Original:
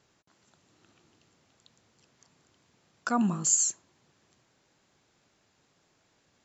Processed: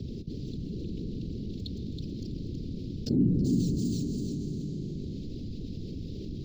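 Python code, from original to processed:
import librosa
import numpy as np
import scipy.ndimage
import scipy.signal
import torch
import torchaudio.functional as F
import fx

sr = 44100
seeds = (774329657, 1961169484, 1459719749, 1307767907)

p1 = scipy.signal.medfilt(x, 5)
p2 = scipy.signal.sosfilt(scipy.signal.cheby1(3, 1.0, [290.0, 4400.0], 'bandstop', fs=sr, output='sos'), p1)
p3 = fx.peak_eq(p2, sr, hz=87.0, db=11.0, octaves=0.58)
p4 = fx.whisperise(p3, sr, seeds[0])
p5 = fx.air_absorb(p4, sr, metres=380.0)
p6 = p5 + fx.echo_feedback(p5, sr, ms=324, feedback_pct=17, wet_db=-7, dry=0)
p7 = fx.rev_freeverb(p6, sr, rt60_s=2.8, hf_ratio=0.9, predelay_ms=90, drr_db=14.0)
y = fx.env_flatten(p7, sr, amount_pct=70)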